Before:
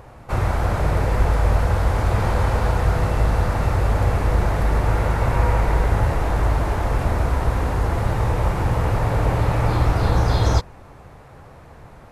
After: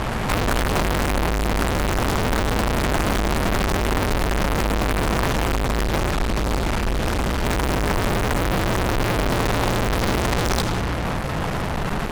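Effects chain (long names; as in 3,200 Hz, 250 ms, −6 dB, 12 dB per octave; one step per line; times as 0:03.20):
low shelf with overshoot 280 Hz +10.5 dB, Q 3
0:05.32–0:07.45: noise gate −5 dBFS, range −13 dB
convolution reverb RT60 1.6 s, pre-delay 20 ms, DRR 16.5 dB
fuzz pedal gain 41 dB, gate −37 dBFS
parametric band 100 Hz −11.5 dB 2.7 octaves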